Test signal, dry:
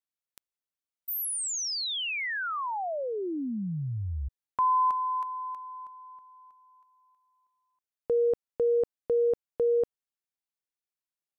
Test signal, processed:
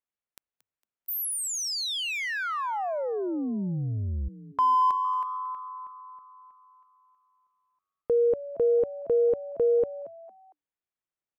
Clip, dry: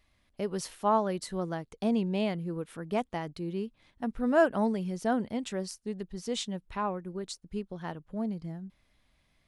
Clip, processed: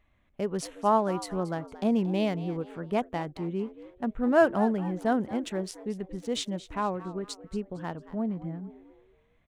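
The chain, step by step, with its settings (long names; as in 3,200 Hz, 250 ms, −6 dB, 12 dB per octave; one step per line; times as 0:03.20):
adaptive Wiener filter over 9 samples
echo with shifted repeats 228 ms, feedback 36%, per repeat +96 Hz, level −16 dB
level +2.5 dB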